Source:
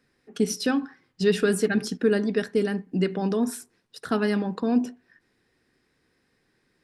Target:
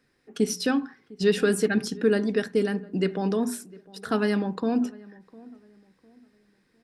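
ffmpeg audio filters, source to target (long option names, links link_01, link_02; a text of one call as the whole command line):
ffmpeg -i in.wav -filter_complex "[0:a]bandreject=frequency=60:width_type=h:width=6,bandreject=frequency=120:width_type=h:width=6,bandreject=frequency=180:width_type=h:width=6,bandreject=frequency=240:width_type=h:width=6,asplit=2[link_01][link_02];[link_02]adelay=704,lowpass=frequency=1200:poles=1,volume=-21.5dB,asplit=2[link_03][link_04];[link_04]adelay=704,lowpass=frequency=1200:poles=1,volume=0.35,asplit=2[link_05][link_06];[link_06]adelay=704,lowpass=frequency=1200:poles=1,volume=0.35[link_07];[link_01][link_03][link_05][link_07]amix=inputs=4:normalize=0" out.wav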